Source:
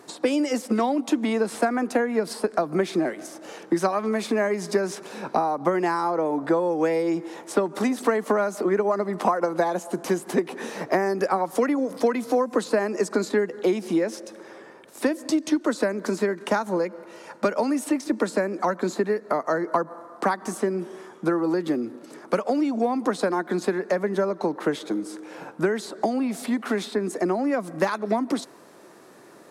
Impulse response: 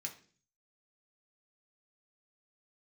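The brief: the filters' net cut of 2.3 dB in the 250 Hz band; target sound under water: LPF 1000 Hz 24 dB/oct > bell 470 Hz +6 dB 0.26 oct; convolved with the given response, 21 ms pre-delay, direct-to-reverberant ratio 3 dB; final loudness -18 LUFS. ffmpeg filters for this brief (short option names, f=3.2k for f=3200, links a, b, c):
-filter_complex "[0:a]equalizer=f=250:t=o:g=-3.5,asplit=2[a][b];[1:a]atrim=start_sample=2205,adelay=21[c];[b][c]afir=irnorm=-1:irlink=0,volume=-1dB[d];[a][d]amix=inputs=2:normalize=0,lowpass=f=1k:w=0.5412,lowpass=f=1k:w=1.3066,equalizer=f=470:t=o:w=0.26:g=6,volume=6dB"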